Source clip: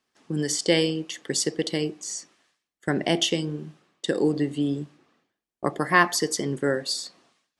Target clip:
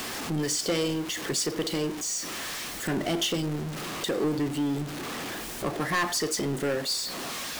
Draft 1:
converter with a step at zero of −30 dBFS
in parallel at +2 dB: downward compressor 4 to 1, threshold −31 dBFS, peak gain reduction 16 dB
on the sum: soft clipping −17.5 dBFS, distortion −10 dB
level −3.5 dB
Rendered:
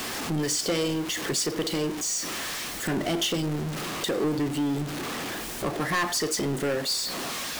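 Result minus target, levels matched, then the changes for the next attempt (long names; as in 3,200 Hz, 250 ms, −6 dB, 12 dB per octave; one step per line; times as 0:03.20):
downward compressor: peak gain reduction −8 dB
change: downward compressor 4 to 1, threshold −41.5 dBFS, peak gain reduction 24 dB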